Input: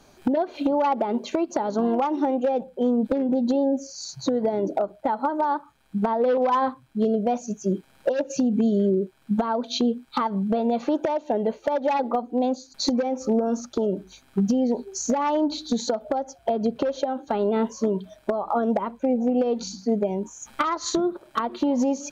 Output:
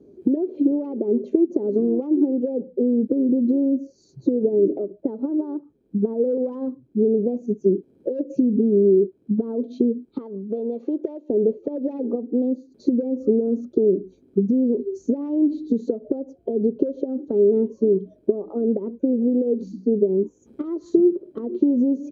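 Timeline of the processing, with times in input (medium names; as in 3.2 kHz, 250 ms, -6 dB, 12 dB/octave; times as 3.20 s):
10.18–11.30 s: high-pass 920 Hz 6 dB/octave
whole clip: high-pass 68 Hz; compression 3:1, threshold -25 dBFS; FFT filter 130 Hz 0 dB, 410 Hz +14 dB, 770 Hz -18 dB, 1.6 kHz -25 dB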